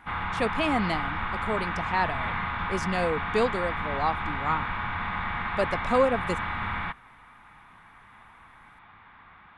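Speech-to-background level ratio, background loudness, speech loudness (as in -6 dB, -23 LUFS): 1.0 dB, -30.5 LUFS, -29.5 LUFS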